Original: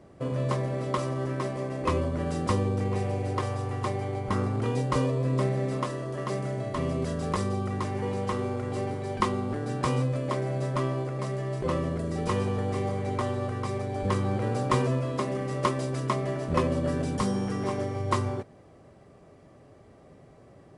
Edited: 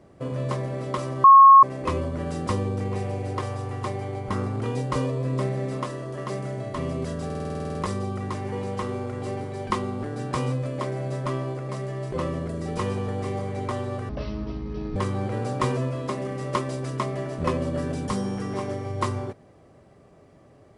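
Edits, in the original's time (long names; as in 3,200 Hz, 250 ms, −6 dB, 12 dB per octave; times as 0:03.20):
0:01.24–0:01.63: beep over 1,090 Hz −7 dBFS
0:07.25: stutter 0.05 s, 11 plays
0:13.59–0:14.06: play speed 54%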